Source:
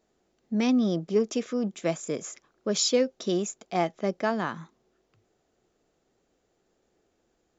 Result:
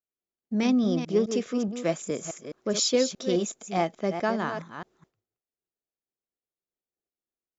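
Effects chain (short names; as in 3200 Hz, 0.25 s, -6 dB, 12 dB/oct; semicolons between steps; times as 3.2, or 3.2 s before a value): reverse delay 0.21 s, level -8 dB; expander -53 dBFS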